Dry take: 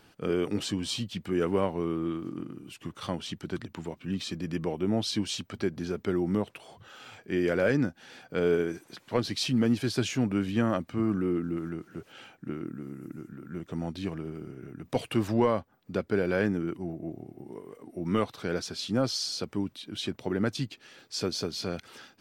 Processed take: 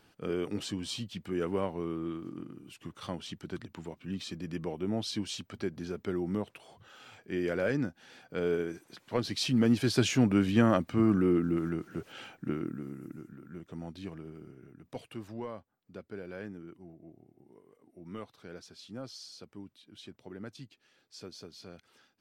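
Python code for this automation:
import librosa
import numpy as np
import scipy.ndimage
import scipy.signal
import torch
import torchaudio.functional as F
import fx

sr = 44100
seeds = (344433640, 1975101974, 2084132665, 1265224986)

y = fx.gain(x, sr, db=fx.line((8.91, -5.0), (10.07, 2.5), (12.49, 2.5), (13.66, -8.0), (14.48, -8.0), (15.22, -15.5)))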